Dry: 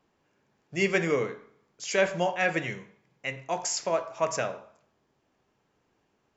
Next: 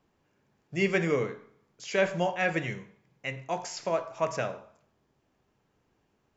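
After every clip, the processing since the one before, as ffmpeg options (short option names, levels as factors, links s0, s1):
-filter_complex "[0:a]acrossover=split=5100[s0][s1];[s1]acompressor=threshold=0.00447:ratio=4:attack=1:release=60[s2];[s0][s2]amix=inputs=2:normalize=0,lowshelf=f=170:g=7.5,volume=0.794"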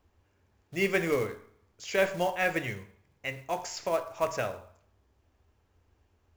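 -af "acrusher=bits=5:mode=log:mix=0:aa=0.000001,lowshelf=f=110:t=q:w=3:g=9"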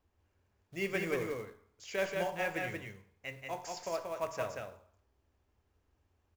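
-af "aecho=1:1:182:0.668,volume=0.398"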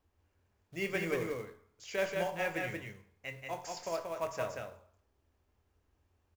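-filter_complex "[0:a]asplit=2[s0][s1];[s1]adelay=24,volume=0.251[s2];[s0][s2]amix=inputs=2:normalize=0"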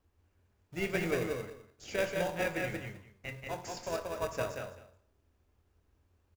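-filter_complex "[0:a]asplit=2[s0][s1];[s1]acrusher=samples=41:mix=1:aa=0.000001,volume=0.501[s2];[s0][s2]amix=inputs=2:normalize=0,aecho=1:1:204:0.158"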